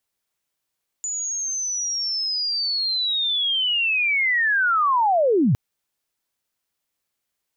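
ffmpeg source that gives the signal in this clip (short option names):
-f lavfi -i "aevalsrc='pow(10,(-24.5+10*t/4.51)/20)*sin(2*PI*(7000*t-6903*t*t/(2*4.51)))':d=4.51:s=44100"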